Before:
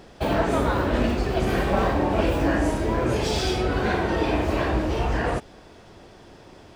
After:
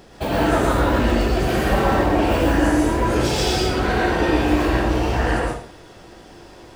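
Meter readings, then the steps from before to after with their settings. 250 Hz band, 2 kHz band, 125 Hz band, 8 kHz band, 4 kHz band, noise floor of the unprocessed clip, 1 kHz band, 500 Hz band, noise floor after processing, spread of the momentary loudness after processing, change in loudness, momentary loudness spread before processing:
+5.0 dB, +5.0 dB, +3.5 dB, +7.0 dB, +5.5 dB, -48 dBFS, +5.0 dB, +3.5 dB, -44 dBFS, 3 LU, +4.5 dB, 3 LU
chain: high shelf 6800 Hz +6.5 dB; plate-style reverb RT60 0.51 s, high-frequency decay 0.95×, pre-delay 0.1 s, DRR -2.5 dB

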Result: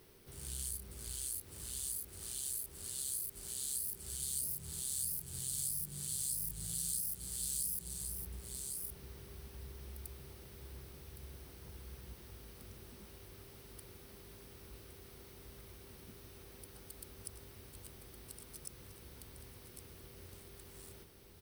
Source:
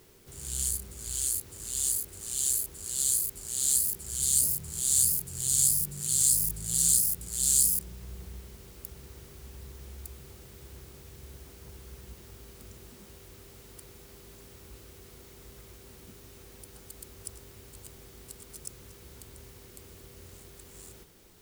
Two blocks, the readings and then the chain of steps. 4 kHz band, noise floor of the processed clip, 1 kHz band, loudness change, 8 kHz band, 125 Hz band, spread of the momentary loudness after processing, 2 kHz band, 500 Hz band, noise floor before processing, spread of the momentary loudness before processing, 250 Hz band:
-10.0 dB, -56 dBFS, n/a, -14.0 dB, -13.5 dB, -7.0 dB, 18 LU, -6.0 dB, -5.5 dB, -52 dBFS, 22 LU, -7.0 dB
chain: on a send: echo 1.114 s -10.5 dB; on the sum: compressor 2:1, threshold -35 dBFS, peak gain reduction 9 dB; bell 7100 Hz -13 dB 0.21 oct; gain -4 dB

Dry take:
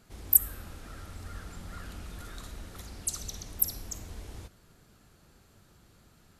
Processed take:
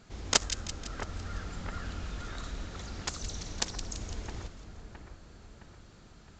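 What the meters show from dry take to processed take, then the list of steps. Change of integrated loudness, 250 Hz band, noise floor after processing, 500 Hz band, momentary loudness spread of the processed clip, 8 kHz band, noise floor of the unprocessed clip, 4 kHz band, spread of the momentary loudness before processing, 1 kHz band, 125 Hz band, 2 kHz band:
-7.5 dB, +5.0 dB, -54 dBFS, +8.0 dB, 25 LU, -2.5 dB, -61 dBFS, +11.0 dB, 23 LU, +8.5 dB, +3.5 dB, +9.5 dB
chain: self-modulated delay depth 0.81 ms; split-band echo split 2000 Hz, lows 0.665 s, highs 0.168 s, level -9.5 dB; dynamic EQ 2700 Hz, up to -4 dB, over -48 dBFS, Q 0.92; gain +3.5 dB; A-law 128 kbps 16000 Hz

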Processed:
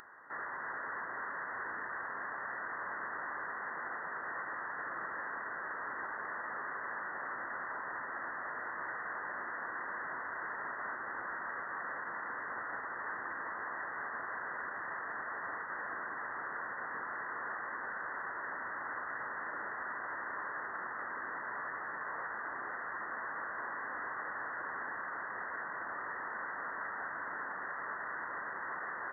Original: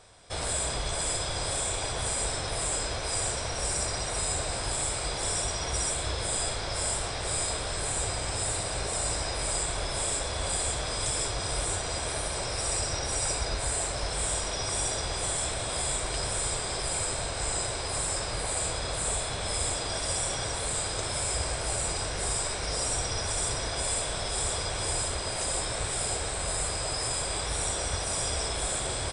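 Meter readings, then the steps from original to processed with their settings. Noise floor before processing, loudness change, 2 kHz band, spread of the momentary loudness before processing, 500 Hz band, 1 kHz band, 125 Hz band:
-33 dBFS, -10.5 dB, +0.5 dB, 2 LU, -14.5 dB, -3.0 dB, -29.5 dB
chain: HPF 670 Hz 24 dB/oct; tilt +4 dB/oct; fixed phaser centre 1100 Hz, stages 4; inverted band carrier 2600 Hz; limiter -35 dBFS, peak gain reduction 7.5 dB; echo with dull and thin repeats by turns 0.402 s, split 1200 Hz, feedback 69%, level -9.5 dB; upward compressor, threshold -51 dBFS; gain +2.5 dB

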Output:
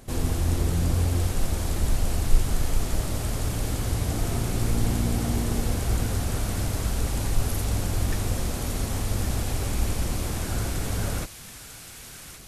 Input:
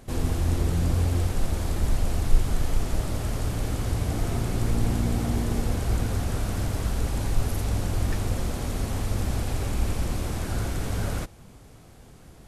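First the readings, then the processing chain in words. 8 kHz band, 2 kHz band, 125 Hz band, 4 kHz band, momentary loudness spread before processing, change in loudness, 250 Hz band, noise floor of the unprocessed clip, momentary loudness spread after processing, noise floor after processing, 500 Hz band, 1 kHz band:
+5.0 dB, +1.5 dB, 0.0 dB, +3.0 dB, 4 LU, +0.5 dB, 0.0 dB, -49 dBFS, 4 LU, -43 dBFS, 0.0 dB, +0.5 dB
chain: high shelf 4800 Hz +5.5 dB; thin delay 1.12 s, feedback 64%, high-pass 1700 Hz, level -7.5 dB

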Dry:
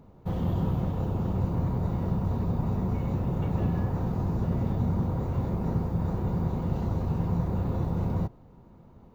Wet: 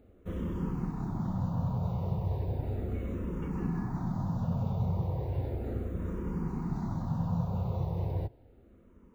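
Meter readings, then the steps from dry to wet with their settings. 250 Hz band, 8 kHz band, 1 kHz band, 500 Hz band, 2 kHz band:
-5.0 dB, n/a, -5.0 dB, -5.0 dB, -4.5 dB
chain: endless phaser -0.35 Hz; gain -2 dB

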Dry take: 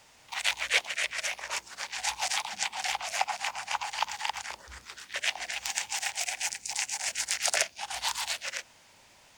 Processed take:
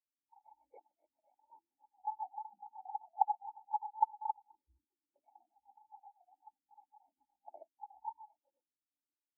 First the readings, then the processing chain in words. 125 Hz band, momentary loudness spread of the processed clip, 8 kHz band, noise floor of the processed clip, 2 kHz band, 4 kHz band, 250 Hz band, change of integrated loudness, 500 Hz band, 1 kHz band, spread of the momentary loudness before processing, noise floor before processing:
n/a, 23 LU, under -40 dB, under -85 dBFS, under -40 dB, under -40 dB, under -20 dB, -9.0 dB, under -15 dB, -3.0 dB, 10 LU, -59 dBFS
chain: vocal tract filter u; spectral expander 2.5:1; gain +14 dB

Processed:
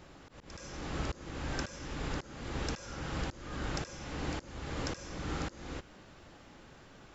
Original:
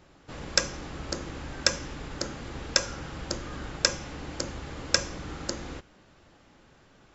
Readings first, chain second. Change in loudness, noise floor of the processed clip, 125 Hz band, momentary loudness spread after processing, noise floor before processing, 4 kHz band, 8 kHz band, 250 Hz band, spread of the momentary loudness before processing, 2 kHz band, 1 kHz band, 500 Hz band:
-9.0 dB, -56 dBFS, -0.5 dB, 17 LU, -59 dBFS, -15.0 dB, n/a, -2.0 dB, 12 LU, -9.0 dB, -3.0 dB, -6.5 dB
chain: reverse echo 75 ms -23.5 dB; auto swell 0.427 s; gain +3 dB

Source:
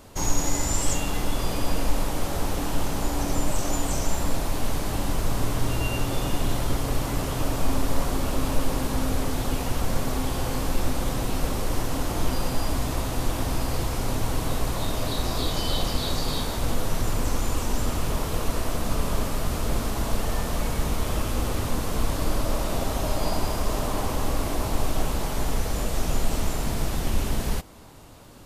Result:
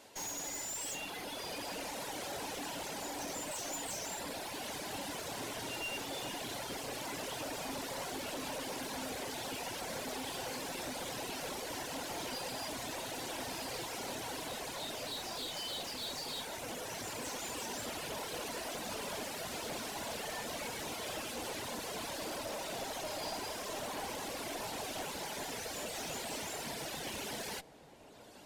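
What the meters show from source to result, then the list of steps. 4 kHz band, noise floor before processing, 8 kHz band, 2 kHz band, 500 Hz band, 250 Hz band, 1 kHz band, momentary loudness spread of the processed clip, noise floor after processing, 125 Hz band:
-6.5 dB, -29 dBFS, -8.5 dB, -6.5 dB, -10.5 dB, -15.5 dB, -10.0 dB, 2 LU, -43 dBFS, -24.5 dB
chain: weighting filter A; reverb removal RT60 1.8 s; bell 1200 Hz -11 dB 0.31 oct; soft clip -34 dBFS, distortion -13 dB; added harmonics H 2 -12 dB, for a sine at -34 dBFS; vocal rider 2 s; darkening echo 0.866 s, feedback 81%, low-pass 1200 Hz, level -17 dB; gain -1.5 dB

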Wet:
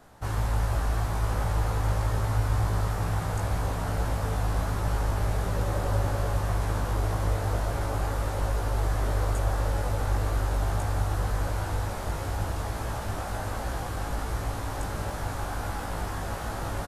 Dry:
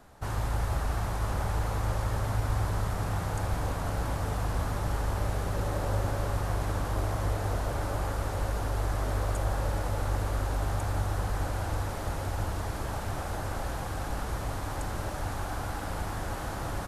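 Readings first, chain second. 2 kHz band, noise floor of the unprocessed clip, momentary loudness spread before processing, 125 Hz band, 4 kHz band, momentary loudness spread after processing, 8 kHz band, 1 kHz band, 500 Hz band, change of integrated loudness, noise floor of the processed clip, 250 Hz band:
+2.0 dB, -35 dBFS, 4 LU, +3.0 dB, +2.0 dB, 6 LU, +1.5 dB, +2.0 dB, +2.0 dB, +2.5 dB, -34 dBFS, +1.5 dB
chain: doubler 18 ms -3 dB

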